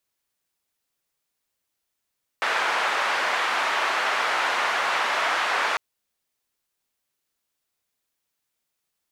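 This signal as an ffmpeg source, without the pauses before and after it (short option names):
-f lavfi -i "anoisesrc=c=white:d=3.35:r=44100:seed=1,highpass=f=860,lowpass=f=1500,volume=-4.8dB"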